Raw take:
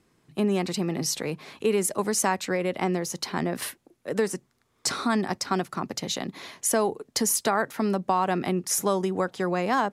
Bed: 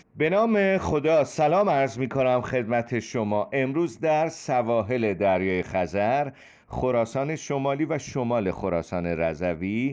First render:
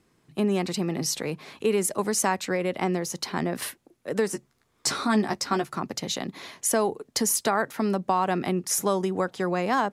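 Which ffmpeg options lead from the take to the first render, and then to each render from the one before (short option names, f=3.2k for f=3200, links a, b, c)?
-filter_complex "[0:a]asettb=1/sr,asplit=3[a][b][c];[a]atrim=end=4.314[d];[b]atrim=start=4.31:end=5.78,asetpts=PTS-STARTPTS,afade=t=in:d=0.004:c=qsin,afade=t=out:st=1.466:d=0.004:c=qsin,asplit=2[e][f];[f]adelay=14,volume=-6dB[g];[e][g]amix=inputs=2:normalize=0,atrim=end_sample=64827[h];[c]atrim=start=5.776[i];[d][h]acrossfade=d=0.004:c1=hsin:c2=qsin[j];[j][i]acrossfade=d=0.004:c1=qsin:c2=hsin"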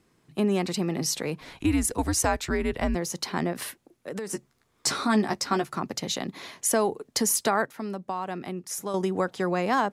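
-filter_complex "[0:a]asplit=3[a][b][c];[a]afade=t=out:st=1.4:d=0.02[d];[b]afreqshift=-130,afade=t=in:st=1.4:d=0.02,afade=t=out:st=2.94:d=0.02[e];[c]afade=t=in:st=2.94:d=0.02[f];[d][e][f]amix=inputs=3:normalize=0,asettb=1/sr,asplit=3[g][h][i];[g]atrim=end=3.524[j];[h]atrim=start=3.52:end=4.3,asetpts=PTS-STARTPTS,afade=t=in:d=0.004:c=qsin,afade=t=out:st=0.776:d=0.004:c=qsin,acompressor=threshold=-30dB:ratio=6:attack=3.2:release=140:knee=1:detection=peak[k];[i]atrim=start=4.296[l];[j][k]acrossfade=d=0.004:c1=hsin:c2=qsin[m];[m][l]acrossfade=d=0.004:c1=qsin:c2=hsin,asplit=3[n][o][p];[n]atrim=end=7.662[q];[o]atrim=start=7.658:end=8.942,asetpts=PTS-STARTPTS,volume=-8dB[r];[p]atrim=start=8.938[s];[q][r]acrossfade=d=0.004:c1=hsin:c2=hsin[t];[t][s]acrossfade=d=0.004:c1=hsin:c2=hsin"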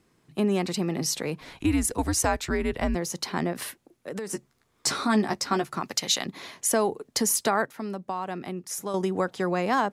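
-filter_complex "[0:a]asettb=1/sr,asplit=3[a][b][c];[a]atrim=end=5.804[d];[b]atrim=start=5.8:end=6.26,asetpts=PTS-STARTPTS,afade=t=in:d=0.004:c=qsin,afade=t=out:st=0.456:d=0.004:c=qsin,tiltshelf=f=790:g=-7[e];[c]atrim=start=6.256[f];[d][e]acrossfade=d=0.004:c1=hsin:c2=qsin[g];[g][f]acrossfade=d=0.004:c1=qsin:c2=hsin"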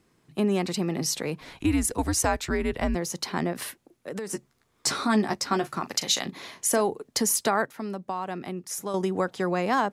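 -filter_complex "[0:a]asettb=1/sr,asplit=3[a][b][c];[a]atrim=end=5.584[d];[b]atrim=start=5.58:end=6.81,asetpts=PTS-STARTPTS,afade=t=in:d=0.004:c=qsin,afade=t=out:st=1.226:d=0.004:c=qsin,asplit=2[e][f];[f]adelay=38,volume=-14dB[g];[e][g]amix=inputs=2:normalize=0,atrim=end_sample=54243[h];[c]atrim=start=6.806[i];[d][h]acrossfade=d=0.004:c1=hsin:c2=qsin[j];[j][i]acrossfade=d=0.004:c1=qsin:c2=hsin"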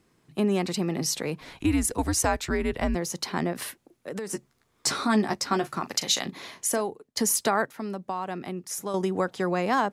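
-filter_complex "[0:a]asplit=2[a][b];[a]atrim=end=7.17,asetpts=PTS-STARTPTS,afade=t=out:st=6.55:d=0.62:silence=0.0944061[c];[b]atrim=start=7.17,asetpts=PTS-STARTPTS,afade=t=in:d=0.004:c=hsin:silence=0.0944061[d];[c][d]concat=n=2:v=0:a=1"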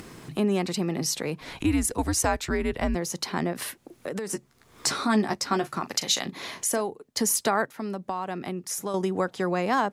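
-af "acompressor=mode=upward:threshold=-27dB:ratio=2.5"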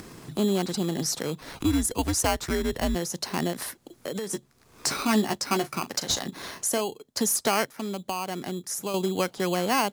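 -filter_complex "[0:a]acrossover=split=2900[a][b];[a]acrusher=samples=12:mix=1:aa=0.000001[c];[b]volume=19dB,asoftclip=hard,volume=-19dB[d];[c][d]amix=inputs=2:normalize=0"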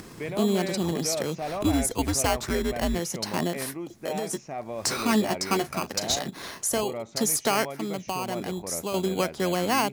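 -filter_complex "[1:a]volume=-11.5dB[a];[0:a][a]amix=inputs=2:normalize=0"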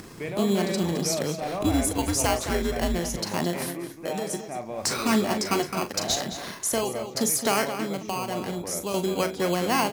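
-filter_complex "[0:a]asplit=2[a][b];[b]adelay=40,volume=-10.5dB[c];[a][c]amix=inputs=2:normalize=0,asplit=2[d][e];[e]adelay=215.7,volume=-9dB,highshelf=f=4k:g=-4.85[f];[d][f]amix=inputs=2:normalize=0"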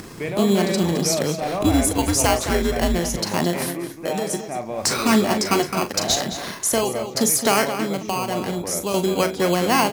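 -af "volume=5.5dB"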